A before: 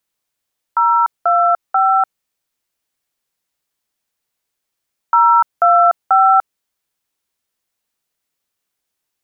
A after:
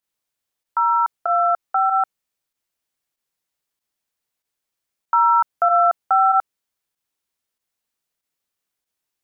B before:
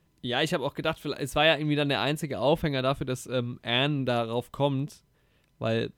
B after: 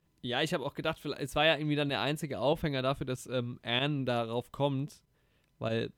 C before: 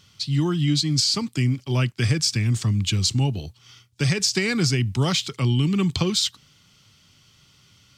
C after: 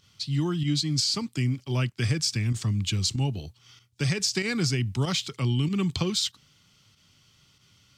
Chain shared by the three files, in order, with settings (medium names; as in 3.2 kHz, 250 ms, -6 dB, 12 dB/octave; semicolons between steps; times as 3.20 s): volume shaper 95 bpm, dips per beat 1, -9 dB, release 62 ms; trim -4.5 dB